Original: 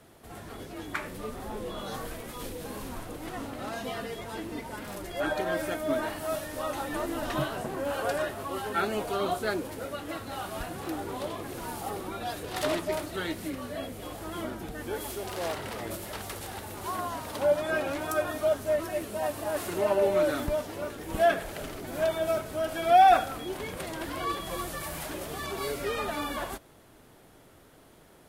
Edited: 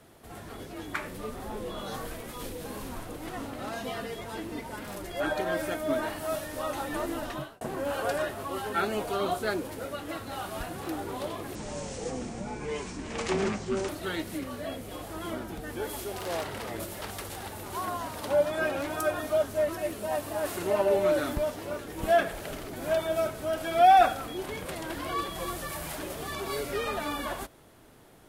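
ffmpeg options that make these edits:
-filter_complex "[0:a]asplit=4[a][b][c][d];[a]atrim=end=7.61,asetpts=PTS-STARTPTS,afade=t=out:st=7.12:d=0.49[e];[b]atrim=start=7.61:end=11.554,asetpts=PTS-STARTPTS,afade=t=in:d=0.004:c=hsin[f];[c]atrim=start=11.55:end=13,asetpts=PTS-STARTPTS,asetrate=27342,aresample=44100,atrim=end_sample=103137,asetpts=PTS-STARTPTS[g];[d]atrim=start=12.996[h];[e][f]concat=n=2:v=0:a=1[i];[i][g]acrossfade=d=0.004:c1=hsin:c2=hsin[j];[j][h]acrossfade=d=0.004:c1=hsin:c2=hsin"

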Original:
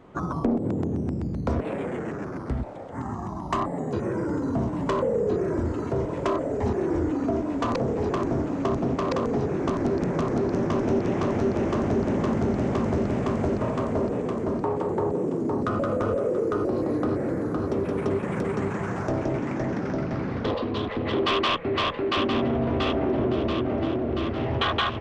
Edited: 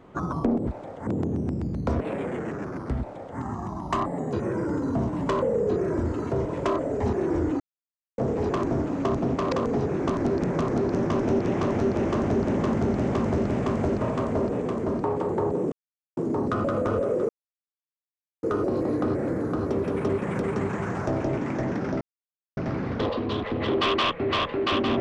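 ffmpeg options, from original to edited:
-filter_complex "[0:a]asplit=8[a][b][c][d][e][f][g][h];[a]atrim=end=0.672[i];[b]atrim=start=2.588:end=2.992[j];[c]atrim=start=0.668:end=7.2,asetpts=PTS-STARTPTS,afade=t=out:st=6.528:d=0.004:c=hsin[k];[d]atrim=start=7.2:end=7.78,asetpts=PTS-STARTPTS,volume=0[l];[e]atrim=start=7.78:end=15.32,asetpts=PTS-STARTPTS,afade=t=in:d=0.004:c=hsin,afade=t=out:st=7.536:d=0.004:c=hsin,apad=pad_dur=0.45[m];[f]atrim=start=15.32:end=16.44,asetpts=PTS-STARTPTS,afade=t=in:d=0.004:c=hsin,afade=t=out:st=1.116:d=0.004:c=hsin,apad=pad_dur=1.14[n];[g]atrim=start=16.44:end=20.02,asetpts=PTS-STARTPTS,afade=t=in:d=0.004:c=hsin,afade=t=out:st=3.576:d=0.004:c=hsin,apad=pad_dur=0.56[o];[h]atrim=start=20.02,asetpts=PTS-STARTPTS,afade=t=in:d=0.004:c=hsin[p];[i][j]acrossfade=d=0.004:c1=hsin:c2=hsin[q];[k][l][m][n][o][p]concat=n=6:v=0:a=1[r];[q][r]acrossfade=d=0.004:c1=hsin:c2=hsin"

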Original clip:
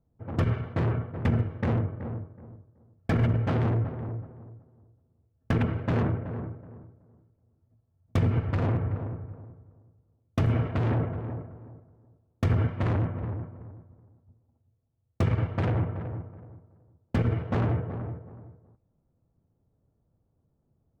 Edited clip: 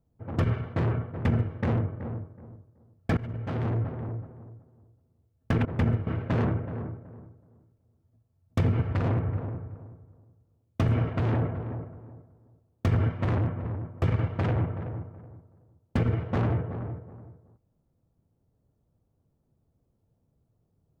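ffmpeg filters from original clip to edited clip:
-filter_complex "[0:a]asplit=5[a][b][c][d][e];[a]atrim=end=3.17,asetpts=PTS-STARTPTS,afade=t=out:st=3.166:d=0.004:c=hsin:silence=0.133352[f];[b]atrim=start=3.17:end=5.652,asetpts=PTS-STARTPTS,afade=t=in:d=0.75:silence=0.133352[g];[c]atrim=start=1.108:end=1.532[h];[d]atrim=start=5.648:end=13.602[i];[e]atrim=start=15.208[j];[f][g]concat=n=2:v=0:a=1[k];[k][h]acrossfade=d=0.004:c1=hsin:c2=hsin[l];[l][i]acrossfade=d=0.004:c1=hsin:c2=hsin[m];[m][j]acrossfade=d=0.004:c1=hsin:c2=hsin"

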